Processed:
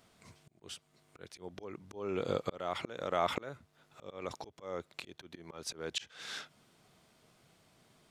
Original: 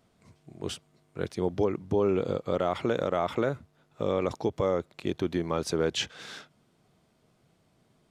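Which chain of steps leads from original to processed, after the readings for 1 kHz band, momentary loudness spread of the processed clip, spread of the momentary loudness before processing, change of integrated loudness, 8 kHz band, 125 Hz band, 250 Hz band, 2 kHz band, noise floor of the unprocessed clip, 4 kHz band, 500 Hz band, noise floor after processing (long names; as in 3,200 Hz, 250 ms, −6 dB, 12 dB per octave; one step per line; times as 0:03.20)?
−6.0 dB, 18 LU, 13 LU, −10.0 dB, −5.5 dB, −14.0 dB, −14.0 dB, −5.5 dB, −68 dBFS, −5.5 dB, −11.5 dB, −72 dBFS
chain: tilt shelving filter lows −4.5 dB, about 790 Hz
volume swells 592 ms
level +2 dB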